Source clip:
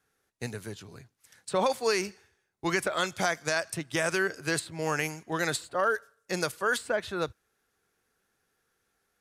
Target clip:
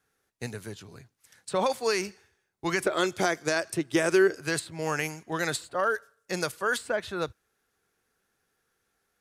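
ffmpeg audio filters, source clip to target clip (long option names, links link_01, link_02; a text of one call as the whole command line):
ffmpeg -i in.wav -filter_complex "[0:a]asettb=1/sr,asplit=3[link_01][link_02][link_03];[link_01]atrim=end=2.804[link_04];[link_02]atrim=start=2.8:end=4.36,asetpts=PTS-STARTPTS,afade=type=in:duration=0.004:curve=qsin,afade=type=out:start_time=1.556:duration=0.004:curve=qsin,equalizer=frequency=360:width=2:gain=11[link_05];[link_03]atrim=start=4.356[link_06];[link_04][link_05]acrossfade=duration=0.004:curve1=hsin:curve2=qsin[link_07];[link_07][link_06]acrossfade=duration=0.004:curve1=qsin:curve2=hsin" out.wav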